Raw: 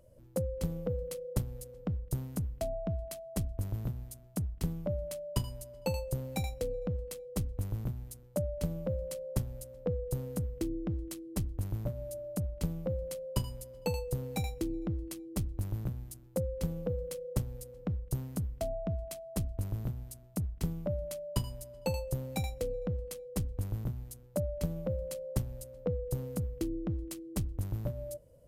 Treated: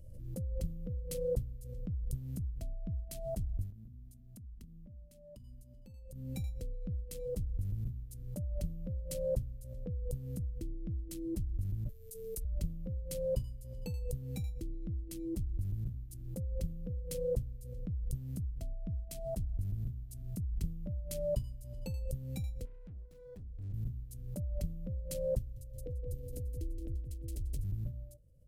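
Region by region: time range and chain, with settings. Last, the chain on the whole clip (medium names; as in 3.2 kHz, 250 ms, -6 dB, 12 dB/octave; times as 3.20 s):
3.70–6.35 s: peaking EQ 230 Hz +13.5 dB 0.46 oct + compression 8:1, threshold -44 dBFS
11.89–12.45 s: tilt EQ +3.5 dB/octave + frequency shift -140 Hz
22.65–23.74 s: median filter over 15 samples + valve stage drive 42 dB, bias 0.3
25.39–27.64 s: static phaser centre 450 Hz, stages 4 + feedback delay 172 ms, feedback 43%, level -4.5 dB
whole clip: amplifier tone stack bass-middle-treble 10-0-1; swell ahead of each attack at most 37 dB/s; trim +6.5 dB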